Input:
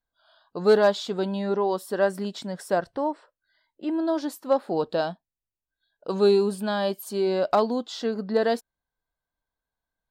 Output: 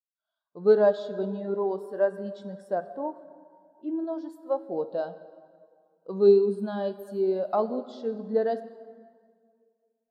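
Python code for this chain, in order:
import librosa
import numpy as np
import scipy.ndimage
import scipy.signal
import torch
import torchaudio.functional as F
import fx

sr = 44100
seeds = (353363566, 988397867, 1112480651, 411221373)

y = fx.low_shelf(x, sr, hz=270.0, db=-12.0, at=(4.04, 4.67))
y = fx.rev_plate(y, sr, seeds[0], rt60_s=3.0, hf_ratio=0.7, predelay_ms=0, drr_db=6.5)
y = fx.spectral_expand(y, sr, expansion=1.5)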